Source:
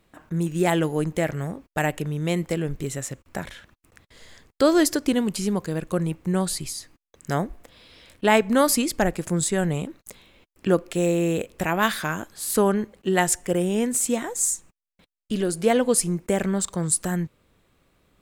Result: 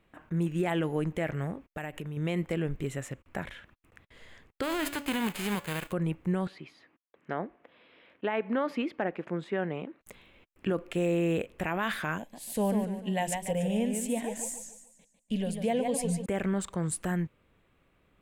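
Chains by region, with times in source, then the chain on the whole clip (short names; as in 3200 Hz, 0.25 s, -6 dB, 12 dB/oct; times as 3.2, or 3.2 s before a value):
1.7–2.17 high shelf 9600 Hz +7.5 dB + compressor 5:1, threshold -30 dBFS
4.62–5.91 spectral whitening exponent 0.3 + notch 5700 Hz, Q 8.4 + de-hum 285.4 Hz, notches 29
6.47–10.01 HPF 260 Hz + air absorption 300 m
12.18–16.26 fixed phaser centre 350 Hz, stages 6 + warbling echo 0.146 s, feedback 38%, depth 136 cents, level -7 dB
whole clip: resonant high shelf 3600 Hz -8 dB, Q 1.5; limiter -16 dBFS; gain -4 dB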